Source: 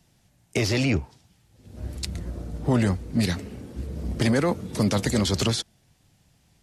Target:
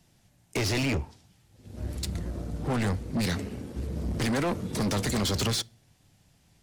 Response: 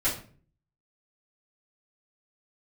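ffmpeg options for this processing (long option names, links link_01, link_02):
-filter_complex "[0:a]asoftclip=type=tanh:threshold=-28dB,asplit=2[link_01][link_02];[1:a]atrim=start_sample=2205[link_03];[link_02][link_03]afir=irnorm=-1:irlink=0,volume=-28.5dB[link_04];[link_01][link_04]amix=inputs=2:normalize=0,aeval=exprs='0.0596*(cos(1*acos(clip(val(0)/0.0596,-1,1)))-cos(1*PI/2))+0.00299*(cos(7*acos(clip(val(0)/0.0596,-1,1)))-cos(7*PI/2))':channel_layout=same,volume=3dB"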